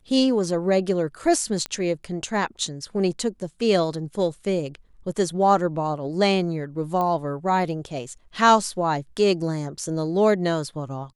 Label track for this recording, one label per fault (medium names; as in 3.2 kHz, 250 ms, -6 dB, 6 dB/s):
1.660000	1.660000	pop -13 dBFS
7.010000	7.010000	pop -15 dBFS